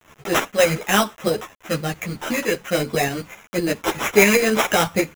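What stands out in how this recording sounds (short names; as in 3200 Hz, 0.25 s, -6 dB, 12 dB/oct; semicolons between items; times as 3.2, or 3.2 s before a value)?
aliases and images of a low sample rate 4500 Hz, jitter 0%; tremolo saw up 7.8 Hz, depth 55%; a quantiser's noise floor 8-bit, dither none; a shimmering, thickened sound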